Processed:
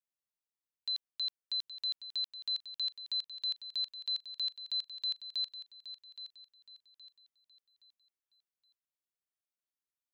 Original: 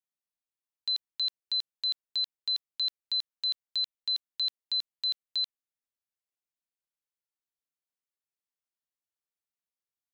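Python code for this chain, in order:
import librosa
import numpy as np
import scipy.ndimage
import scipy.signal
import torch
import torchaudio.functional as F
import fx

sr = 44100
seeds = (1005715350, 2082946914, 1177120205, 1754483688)

y = fx.echo_feedback(x, sr, ms=820, feedback_pct=35, wet_db=-12.0)
y = F.gain(torch.from_numpy(y), -5.5).numpy()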